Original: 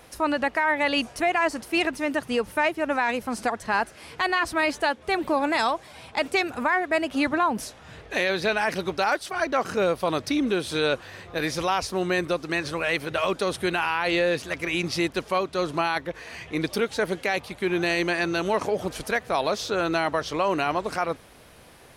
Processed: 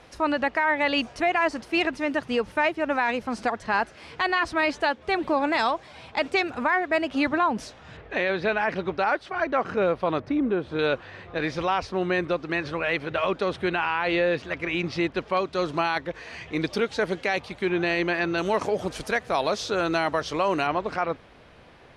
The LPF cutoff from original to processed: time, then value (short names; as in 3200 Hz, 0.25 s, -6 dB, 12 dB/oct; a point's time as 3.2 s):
5300 Hz
from 7.97 s 2600 Hz
from 10.2 s 1400 Hz
from 10.79 s 3200 Hz
from 15.37 s 5900 Hz
from 17.69 s 3500 Hz
from 18.38 s 8400 Hz
from 20.67 s 3500 Hz